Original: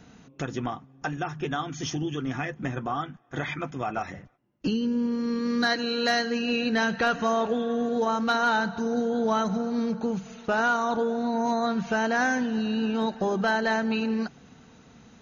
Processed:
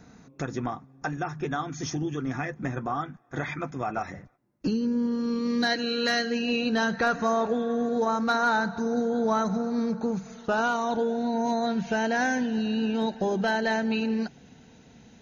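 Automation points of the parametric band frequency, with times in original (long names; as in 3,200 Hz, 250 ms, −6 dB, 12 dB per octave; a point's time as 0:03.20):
parametric band −14 dB 0.28 octaves
0:04.92 3,000 Hz
0:06.08 770 Hz
0:07.01 3,000 Hz
0:10.29 3,000 Hz
0:10.93 1,200 Hz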